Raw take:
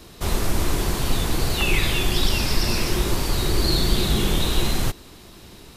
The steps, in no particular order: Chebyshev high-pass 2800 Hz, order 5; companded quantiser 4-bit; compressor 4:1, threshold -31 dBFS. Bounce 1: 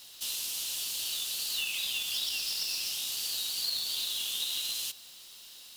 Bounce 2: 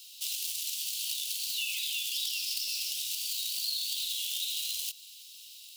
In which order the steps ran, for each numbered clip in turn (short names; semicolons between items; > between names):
Chebyshev high-pass > compressor > companded quantiser; companded quantiser > Chebyshev high-pass > compressor